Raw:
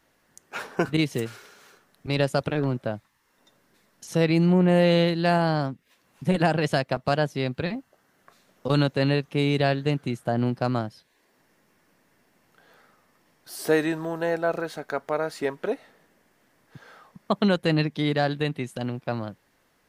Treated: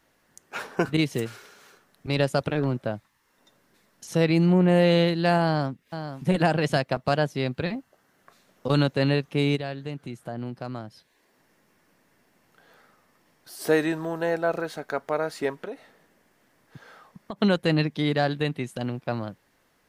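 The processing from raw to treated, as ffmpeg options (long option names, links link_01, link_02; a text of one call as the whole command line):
ffmpeg -i in.wav -filter_complex "[0:a]asplit=2[link_01][link_02];[link_02]afade=type=in:start_time=5.44:duration=0.01,afade=type=out:start_time=6.28:duration=0.01,aecho=0:1:480|960:0.334965|0.0502448[link_03];[link_01][link_03]amix=inputs=2:normalize=0,asplit=3[link_04][link_05][link_06];[link_04]afade=type=out:start_time=9.55:duration=0.02[link_07];[link_05]acompressor=threshold=-46dB:ratio=1.5:attack=3.2:release=140:knee=1:detection=peak,afade=type=in:start_time=9.55:duration=0.02,afade=type=out:start_time=13.6:duration=0.02[link_08];[link_06]afade=type=in:start_time=13.6:duration=0.02[link_09];[link_07][link_08][link_09]amix=inputs=3:normalize=0,asettb=1/sr,asplit=3[link_10][link_11][link_12];[link_10]atrim=end=15.624[link_13];[link_11]atrim=start=15.62:end=17.41,asetpts=PTS-STARTPTS,afade=type=in:duration=0.004:curve=qsin,afade=type=out:start_time=1.786:duration=0.004:curve=qsin,acompressor=threshold=-31dB:ratio=6:attack=3.2:release=140:knee=1:detection=peak[link_14];[link_12]atrim=start=17.406[link_15];[link_13][link_14]acrossfade=duration=0.004:curve1=hsin:curve2=qsin[link_16];[link_16][link_15]acrossfade=duration=0.004:curve1=qsin:curve2=hsin" out.wav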